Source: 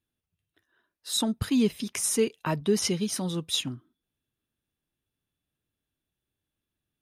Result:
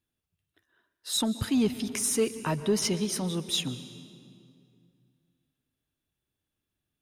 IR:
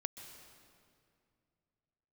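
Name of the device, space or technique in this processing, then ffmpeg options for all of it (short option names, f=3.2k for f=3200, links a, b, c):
saturated reverb return: -filter_complex "[0:a]asplit=2[a][b];[1:a]atrim=start_sample=2205[c];[b][c]afir=irnorm=-1:irlink=0,asoftclip=type=tanh:threshold=-25dB,volume=1dB[d];[a][d]amix=inputs=2:normalize=0,volume=-5dB"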